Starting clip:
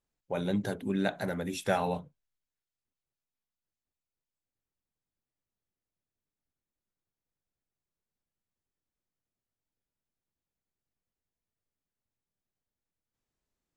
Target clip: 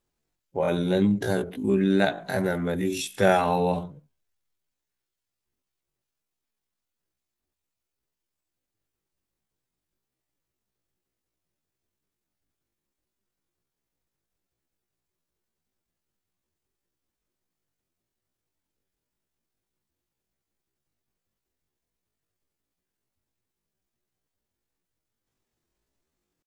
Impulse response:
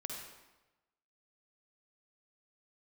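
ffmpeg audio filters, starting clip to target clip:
-af "equalizer=frequency=360:width=4.9:gain=5.5,atempo=0.52,volume=7dB"

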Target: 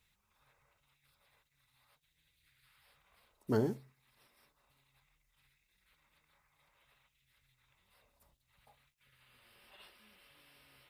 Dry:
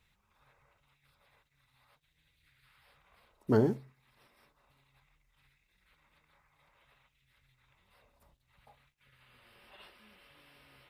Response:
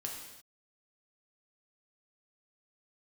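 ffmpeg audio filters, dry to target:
-af "highshelf=frequency=4000:gain=9.5,volume=-5.5dB"

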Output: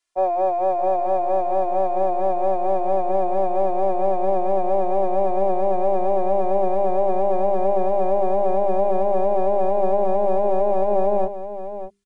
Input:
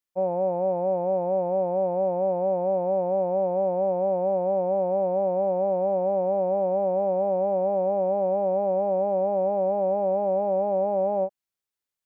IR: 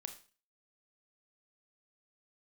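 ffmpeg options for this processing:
-filter_complex "[0:a]aresample=22050,aresample=44100,acrossover=split=220|450[link_01][link_02][link_03];[link_02]aeval=exprs='clip(val(0),-1,0.0106)':channel_layout=same[link_04];[link_03]acontrast=81[link_05];[link_01][link_04][link_05]amix=inputs=3:normalize=0,aecho=1:1:2.9:0.99,asplit=2[link_06][link_07];[link_07]aecho=0:1:608:0.282[link_08];[link_06][link_08]amix=inputs=2:normalize=0,asubboost=boost=9.5:cutoff=190,bandreject=frequency=50:width_type=h:width=6,bandreject=frequency=100:width_type=h:width=6,bandreject=frequency=150:width_type=h:width=6,bandreject=frequency=200:width_type=h:width=6,bandreject=frequency=250:width_type=h:width=6,bandreject=frequency=300:width_type=h:width=6,bandreject=frequency=350:width_type=h:width=6,bandreject=frequency=400:width_type=h:width=6,volume=1.5dB"

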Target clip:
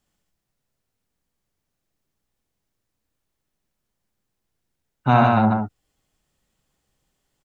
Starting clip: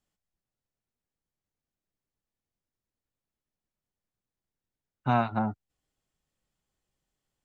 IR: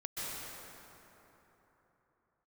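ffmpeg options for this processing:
-af "aecho=1:1:64.14|145.8:0.562|0.708,volume=8dB"

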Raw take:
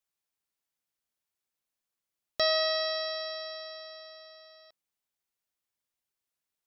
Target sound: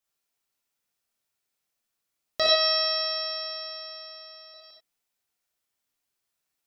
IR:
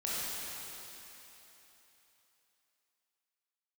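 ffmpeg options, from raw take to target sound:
-filter_complex "[0:a]asettb=1/sr,asplit=3[link_01][link_02][link_03];[link_01]atrim=end=2.464[link_04];[link_02]atrim=start=2.46:end=4.54,asetpts=PTS-STARTPTS,afade=type=in:duration=0.004:curve=qsin,afade=type=out:start_time=2.076:duration=0.004:curve=qsin,acrossover=split=330|5000[link_05][link_06][link_07];[link_05]adelay=30[link_08];[link_07]adelay=70[link_09];[link_08][link_06][link_09]amix=inputs=3:normalize=0,atrim=end_sample=91728[link_10];[link_03]atrim=start=4.536[link_11];[link_04][link_10]acrossfade=duration=0.004:curve1=hsin:curve2=qsin[link_12];[link_12][link_11]acrossfade=duration=0.004:curve1=qsin:curve2=hsin[link_13];[1:a]atrim=start_sample=2205,atrim=end_sample=4410[link_14];[link_13][link_14]afir=irnorm=-1:irlink=0,volume=4.5dB"

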